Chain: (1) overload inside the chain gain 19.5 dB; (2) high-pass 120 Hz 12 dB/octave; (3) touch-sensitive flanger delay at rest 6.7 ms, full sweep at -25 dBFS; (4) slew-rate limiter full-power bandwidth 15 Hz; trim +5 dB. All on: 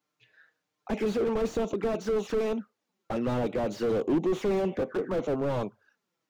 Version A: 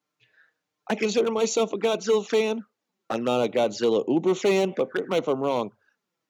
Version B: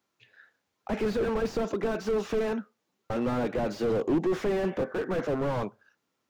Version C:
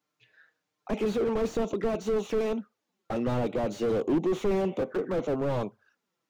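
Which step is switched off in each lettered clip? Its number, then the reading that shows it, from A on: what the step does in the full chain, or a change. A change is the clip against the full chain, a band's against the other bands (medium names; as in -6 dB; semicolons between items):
4, 125 Hz band -7.5 dB; 3, 2 kHz band +3.5 dB; 1, distortion -11 dB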